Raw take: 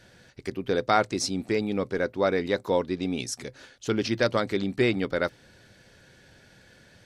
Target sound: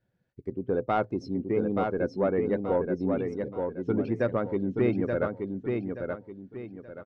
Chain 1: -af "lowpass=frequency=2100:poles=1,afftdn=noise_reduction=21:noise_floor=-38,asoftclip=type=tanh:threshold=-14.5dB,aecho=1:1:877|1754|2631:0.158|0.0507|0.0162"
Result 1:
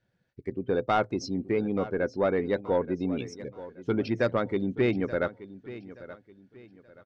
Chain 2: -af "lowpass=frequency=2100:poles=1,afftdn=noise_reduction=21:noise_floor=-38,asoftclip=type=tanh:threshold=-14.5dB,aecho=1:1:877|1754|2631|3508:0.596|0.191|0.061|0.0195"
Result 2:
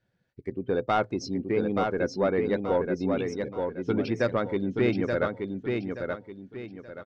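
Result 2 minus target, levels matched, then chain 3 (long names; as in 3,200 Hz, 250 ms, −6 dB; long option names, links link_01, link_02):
2,000 Hz band +4.0 dB
-af "lowpass=frequency=840:poles=1,afftdn=noise_reduction=21:noise_floor=-38,asoftclip=type=tanh:threshold=-14.5dB,aecho=1:1:877|1754|2631|3508:0.596|0.191|0.061|0.0195"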